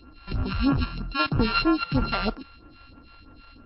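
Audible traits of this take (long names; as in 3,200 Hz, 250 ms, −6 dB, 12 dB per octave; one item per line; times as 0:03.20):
a buzz of ramps at a fixed pitch in blocks of 32 samples
phaser sweep stages 2, 3.1 Hz, lowest notch 220–4,300 Hz
MP3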